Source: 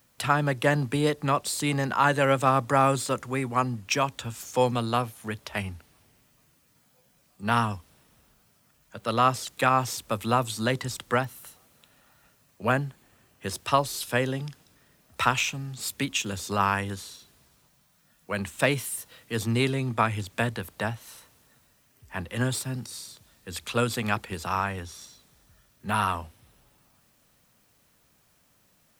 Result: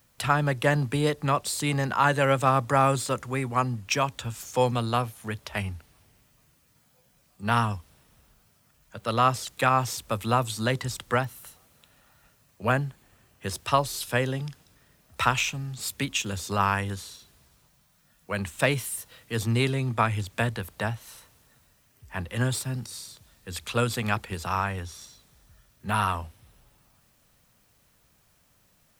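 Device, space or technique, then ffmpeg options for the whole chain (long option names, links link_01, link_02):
low shelf boost with a cut just above: -af "lowshelf=frequency=96:gain=7,equalizer=frequency=270:width_type=o:width=1.1:gain=-2.5"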